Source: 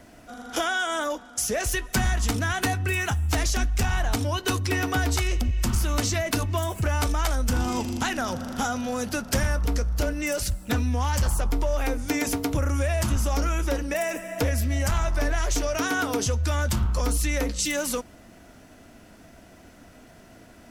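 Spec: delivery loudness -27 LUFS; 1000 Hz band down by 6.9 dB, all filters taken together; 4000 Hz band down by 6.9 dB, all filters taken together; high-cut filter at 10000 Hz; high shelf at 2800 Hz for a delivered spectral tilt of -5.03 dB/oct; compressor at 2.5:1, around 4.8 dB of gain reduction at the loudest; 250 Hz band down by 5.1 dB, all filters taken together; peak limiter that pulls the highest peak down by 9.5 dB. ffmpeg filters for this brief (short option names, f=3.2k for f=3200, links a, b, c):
-af "lowpass=10k,equalizer=f=250:t=o:g=-5.5,equalizer=f=1k:t=o:g=-8.5,highshelf=f=2.8k:g=-6.5,equalizer=f=4k:t=o:g=-3,acompressor=threshold=-28dB:ratio=2.5,volume=11dB,alimiter=limit=-19dB:level=0:latency=1"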